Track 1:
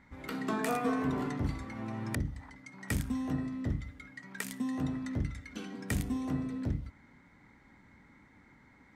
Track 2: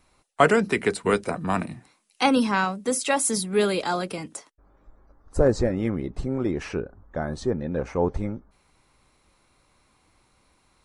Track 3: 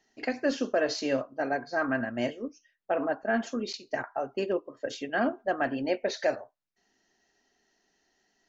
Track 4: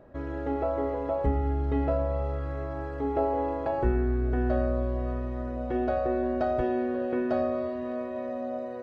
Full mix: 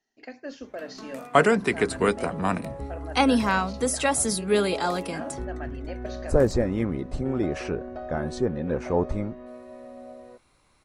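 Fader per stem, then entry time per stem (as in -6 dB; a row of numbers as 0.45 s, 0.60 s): -10.5 dB, -0.5 dB, -10.5 dB, -9.5 dB; 0.50 s, 0.95 s, 0.00 s, 1.55 s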